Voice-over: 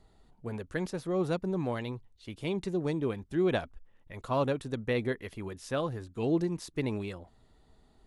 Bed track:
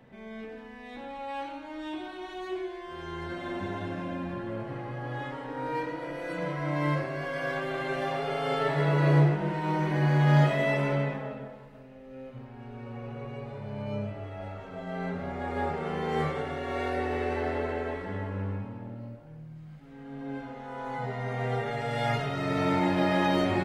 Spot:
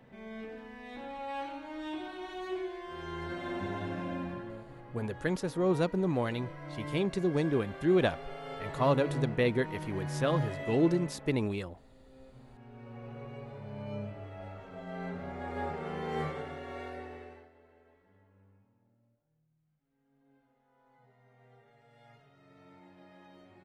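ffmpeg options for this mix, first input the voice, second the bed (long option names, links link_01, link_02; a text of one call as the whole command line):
ffmpeg -i stem1.wav -i stem2.wav -filter_complex "[0:a]adelay=4500,volume=2dB[link_01];[1:a]volume=5.5dB,afade=type=out:start_time=4.19:duration=0.46:silence=0.281838,afade=type=in:start_time=12.24:duration=0.89:silence=0.421697,afade=type=out:start_time=16.21:duration=1.28:silence=0.0530884[link_02];[link_01][link_02]amix=inputs=2:normalize=0" out.wav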